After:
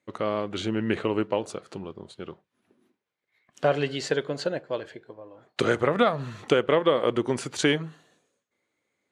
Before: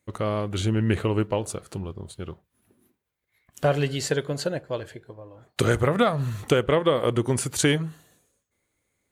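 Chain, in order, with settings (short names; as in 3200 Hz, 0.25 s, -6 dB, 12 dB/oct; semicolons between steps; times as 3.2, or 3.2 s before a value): BPF 210–5100 Hz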